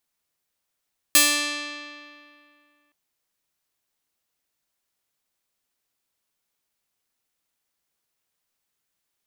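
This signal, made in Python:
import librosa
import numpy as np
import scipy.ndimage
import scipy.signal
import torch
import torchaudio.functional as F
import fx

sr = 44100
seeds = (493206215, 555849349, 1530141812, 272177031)

y = fx.pluck(sr, length_s=1.77, note=62, decay_s=2.36, pick=0.39, brightness='bright')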